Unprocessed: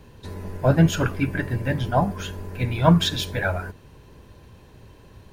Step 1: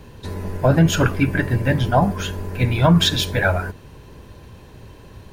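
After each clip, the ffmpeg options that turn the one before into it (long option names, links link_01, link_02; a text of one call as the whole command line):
ffmpeg -i in.wav -af "alimiter=level_in=11dB:limit=-1dB:release=50:level=0:latency=1,volume=-5dB" out.wav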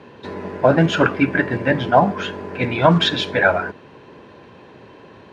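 ffmpeg -i in.wav -af "acrusher=bits=8:mode=log:mix=0:aa=0.000001,highpass=240,lowpass=2900,volume=4.5dB" out.wav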